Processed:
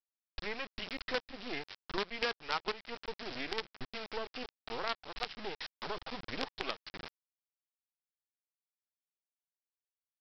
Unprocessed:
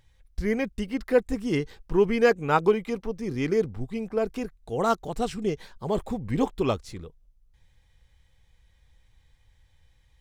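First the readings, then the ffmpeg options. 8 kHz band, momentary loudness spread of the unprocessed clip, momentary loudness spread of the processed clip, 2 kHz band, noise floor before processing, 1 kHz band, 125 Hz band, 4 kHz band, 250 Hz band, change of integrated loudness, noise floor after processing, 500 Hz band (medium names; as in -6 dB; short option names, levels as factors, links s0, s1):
-13.5 dB, 10 LU, 8 LU, -5.5 dB, -63 dBFS, -11.0 dB, -22.0 dB, +2.5 dB, -19.5 dB, -13.0 dB, under -85 dBFS, -17.5 dB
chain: -af "equalizer=f=100:w=0.38:g=-9,aresample=11025,acrusher=bits=4:dc=4:mix=0:aa=0.000001,aresample=44100,tiltshelf=f=810:g=-5,acompressor=threshold=0.0126:ratio=3,volume=1.19"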